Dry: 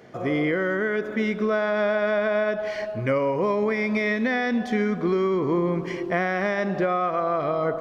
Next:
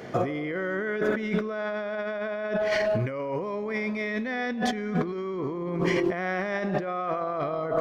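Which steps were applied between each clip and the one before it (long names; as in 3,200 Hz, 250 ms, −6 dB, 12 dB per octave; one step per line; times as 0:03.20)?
compressor whose output falls as the input rises −31 dBFS, ratio −1
level +2 dB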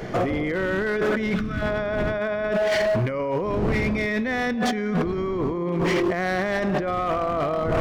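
wind on the microphone 270 Hz −37 dBFS
hard clipping −24 dBFS, distortion −12 dB
gain on a spectral selection 0:01.35–0:01.62, 320–1,100 Hz −13 dB
level +5.5 dB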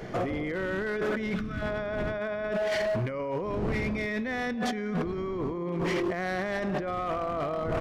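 downsampling to 32,000 Hz
level −6.5 dB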